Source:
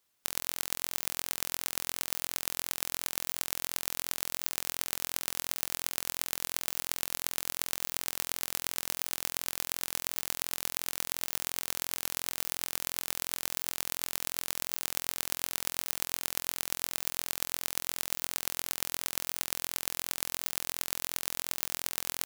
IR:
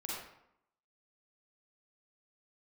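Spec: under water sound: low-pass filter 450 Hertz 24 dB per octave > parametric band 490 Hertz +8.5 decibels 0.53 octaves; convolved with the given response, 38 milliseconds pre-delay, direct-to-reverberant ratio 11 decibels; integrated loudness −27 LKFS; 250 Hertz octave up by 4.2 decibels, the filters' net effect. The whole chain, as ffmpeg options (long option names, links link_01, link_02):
-filter_complex "[0:a]equalizer=frequency=250:width_type=o:gain=4.5,asplit=2[link_01][link_02];[1:a]atrim=start_sample=2205,adelay=38[link_03];[link_02][link_03]afir=irnorm=-1:irlink=0,volume=-12dB[link_04];[link_01][link_04]amix=inputs=2:normalize=0,lowpass=frequency=450:width=0.5412,lowpass=frequency=450:width=1.3066,equalizer=frequency=490:width_type=o:width=0.53:gain=8.5,volume=21.5dB"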